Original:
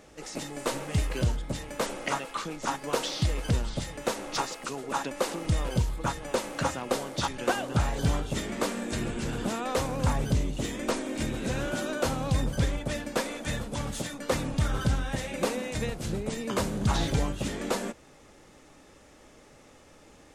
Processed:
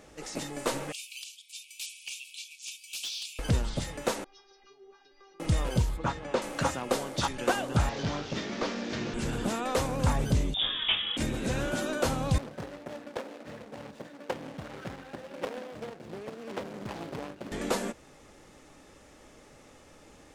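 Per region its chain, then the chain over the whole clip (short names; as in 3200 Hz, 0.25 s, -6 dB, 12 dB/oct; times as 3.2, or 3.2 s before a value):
0.92–3.39 Chebyshev high-pass 2300 Hz, order 10 + hard clip -30.5 dBFS
4.24–5.4 steep low-pass 6000 Hz 96 dB/oct + compressor 8:1, threshold -37 dBFS + metallic resonator 390 Hz, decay 0.31 s, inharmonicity 0.002
5.97–6.42 HPF 52 Hz + air absorption 120 m
7.89–9.14 delta modulation 32 kbps, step -33.5 dBFS + HPF 130 Hz + tube stage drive 22 dB, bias 0.35
10.54–11.17 doubler 18 ms -3 dB + inverted band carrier 3600 Hz
12.38–17.52 median filter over 41 samples + weighting filter A + Doppler distortion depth 0.63 ms
whole clip: dry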